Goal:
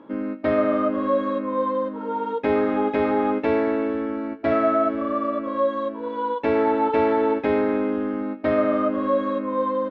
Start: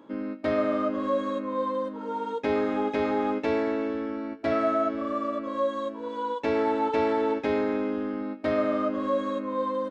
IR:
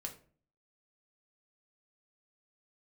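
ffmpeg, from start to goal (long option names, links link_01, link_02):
-af "lowpass=2700,volume=5dB"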